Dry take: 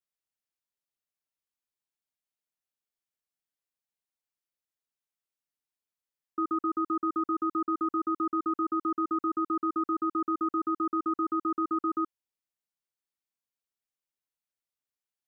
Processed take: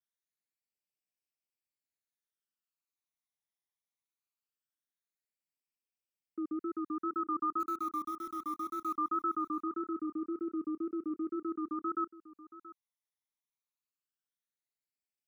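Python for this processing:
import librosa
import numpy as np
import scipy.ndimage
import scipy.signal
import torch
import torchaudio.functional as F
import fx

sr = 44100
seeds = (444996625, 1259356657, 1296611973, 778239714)

y = fx.highpass(x, sr, hz=150.0, slope=6)
y = fx.wow_flutter(y, sr, seeds[0], rate_hz=2.1, depth_cents=77.0)
y = fx.quant_dither(y, sr, seeds[1], bits=8, dither='none', at=(7.59, 8.96), fade=0.02)
y = fx.phaser_stages(y, sr, stages=12, low_hz=470.0, high_hz=1300.0, hz=0.21, feedback_pct=30)
y = y + 10.0 ** (-17.0 / 20.0) * np.pad(y, (int(678 * sr / 1000.0), 0))[:len(y)]
y = y * librosa.db_to_amplitude(-2.5)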